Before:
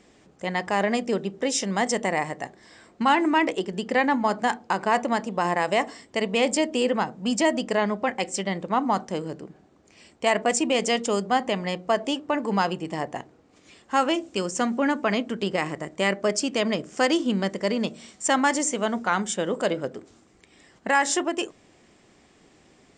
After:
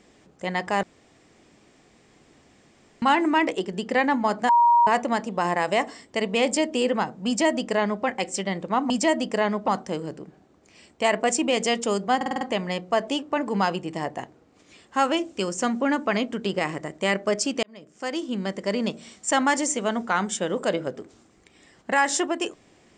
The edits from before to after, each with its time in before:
0.83–3.02 s: room tone
4.49–4.87 s: bleep 948 Hz -13.5 dBFS
7.27–8.05 s: copy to 8.90 s
11.38 s: stutter 0.05 s, 6 plays
16.60–17.80 s: fade in

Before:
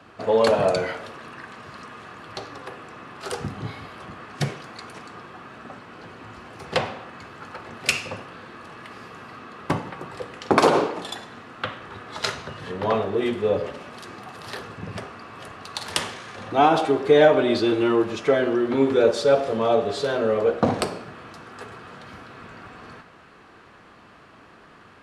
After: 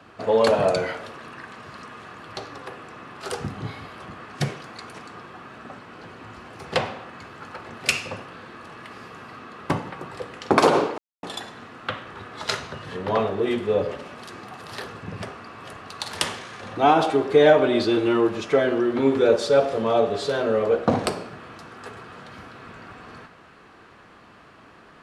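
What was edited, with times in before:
10.98 s: insert silence 0.25 s

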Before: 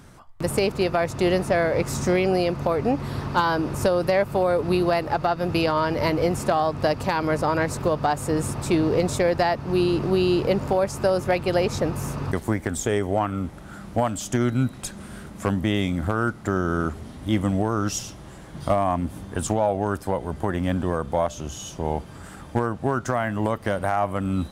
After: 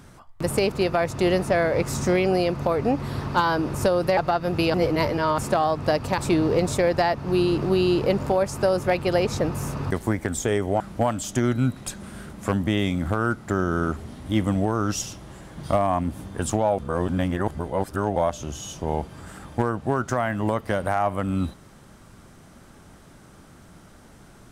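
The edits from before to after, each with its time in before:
4.17–5.13 s: delete
5.70–6.34 s: reverse
7.14–8.59 s: delete
13.21–13.77 s: delete
19.75–21.13 s: reverse

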